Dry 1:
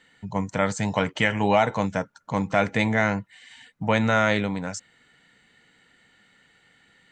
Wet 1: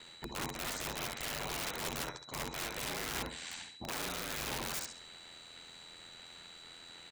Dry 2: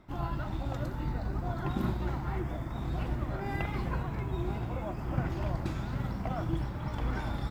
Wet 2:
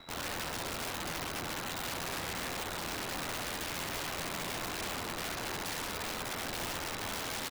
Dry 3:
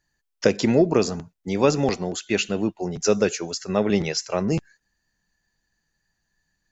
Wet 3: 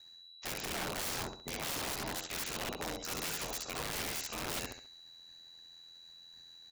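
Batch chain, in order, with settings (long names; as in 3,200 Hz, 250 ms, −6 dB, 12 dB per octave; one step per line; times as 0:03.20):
ceiling on every frequency bin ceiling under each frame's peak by 20 dB
reversed playback
downward compressor 8 to 1, threshold −36 dBFS
reversed playback
steady tone 3,900 Hz −57 dBFS
ring modulation 42 Hz
repeating echo 67 ms, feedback 34%, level −6.5 dB
wrap-around overflow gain 37.5 dB
level +6 dB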